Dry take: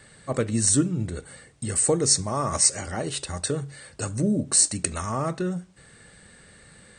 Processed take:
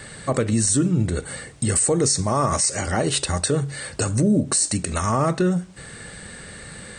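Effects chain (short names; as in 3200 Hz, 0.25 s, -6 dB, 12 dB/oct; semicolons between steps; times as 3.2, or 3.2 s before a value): in parallel at +2.5 dB: compressor, threshold -36 dBFS, peak gain reduction 20 dB; on the sum: limiter -15.5 dBFS, peak gain reduction 11 dB; gain +5 dB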